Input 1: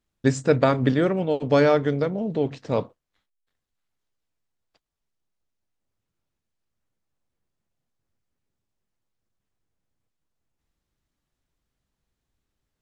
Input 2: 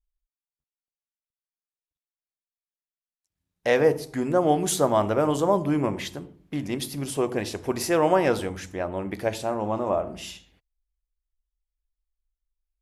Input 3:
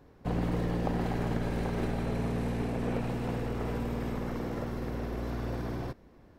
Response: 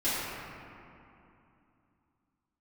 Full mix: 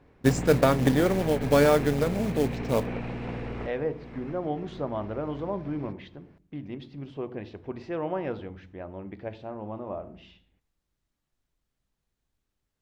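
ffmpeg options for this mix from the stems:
-filter_complex "[0:a]acrusher=bits=4:mode=log:mix=0:aa=0.000001,volume=-2dB[a];[1:a]lowpass=f=3.6k:w=0.5412,lowpass=f=3.6k:w=1.3066,lowshelf=f=430:g=7.5,volume=-13.5dB,asplit=2[b][c];[2:a]lowpass=4.4k,equalizer=f=2.3k:t=o:w=0.65:g=6.5,volume=-1.5dB[d];[c]apad=whole_len=281361[e];[d][e]sidechaincompress=threshold=-38dB:ratio=5:attack=8.5:release=602[f];[a][b][f]amix=inputs=3:normalize=0"

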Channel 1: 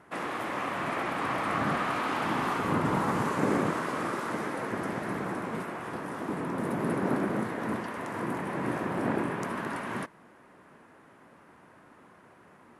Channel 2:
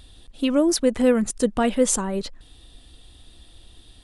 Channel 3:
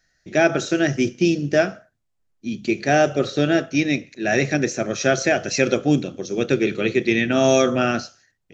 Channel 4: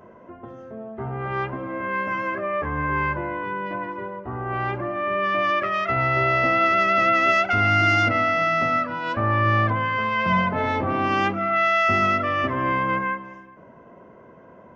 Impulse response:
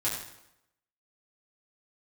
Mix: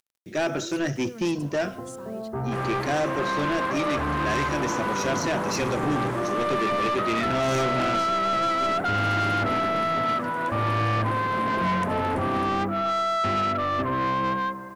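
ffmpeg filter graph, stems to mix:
-filter_complex "[0:a]adelay=2400,volume=0.5dB[a];[1:a]highpass=f=150:p=1,alimiter=limit=-18.5dB:level=0:latency=1:release=96,acrusher=bits=6:mix=0:aa=0.000001,volume=-15.5dB[b];[2:a]volume=-3.5dB[c];[3:a]lowpass=f=1.6k:w=0.5412,lowpass=f=1.6k:w=1.3066,adelay=1350,volume=2dB[d];[a][b][c][d]amix=inputs=4:normalize=0,acrusher=bits=9:mix=0:aa=0.000001,asoftclip=type=tanh:threshold=-20.5dB"

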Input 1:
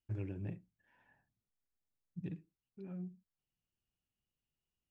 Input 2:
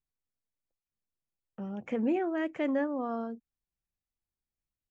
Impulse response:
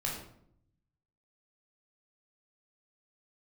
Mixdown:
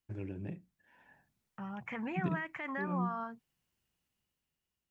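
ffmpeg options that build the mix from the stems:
-filter_complex "[0:a]highpass=57,equalizer=f=110:w=5.1:g=-8,bandreject=f=1.2k:w=14,volume=2dB[a];[1:a]equalizer=f=125:t=o:w=1:g=11,equalizer=f=250:t=o:w=1:g=-7,equalizer=f=500:t=o:w=1:g=-11,equalizer=f=1k:t=o:w=1:g=12,equalizer=f=2k:t=o:w=1:g=11,alimiter=level_in=3dB:limit=-24dB:level=0:latency=1:release=96,volume=-3dB,volume=-10.5dB[b];[a][b]amix=inputs=2:normalize=0,dynaudnorm=f=200:g=9:m=7dB"

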